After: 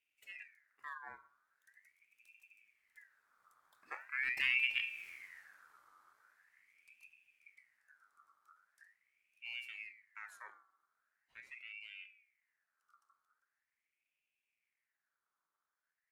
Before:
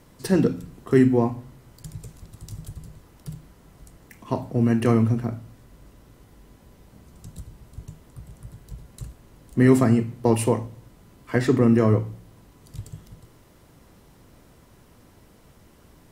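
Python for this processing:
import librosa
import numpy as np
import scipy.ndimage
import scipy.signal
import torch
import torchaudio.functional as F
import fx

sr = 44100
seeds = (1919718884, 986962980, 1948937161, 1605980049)

y = fx.doppler_pass(x, sr, speed_mps=32, closest_m=4.8, pass_at_s=5.08)
y = fx.peak_eq(y, sr, hz=1500.0, db=-12.0, octaves=0.59)
y = fx.ring_lfo(y, sr, carrier_hz=1900.0, swing_pct=35, hz=0.42)
y = y * librosa.db_to_amplitude(1.0)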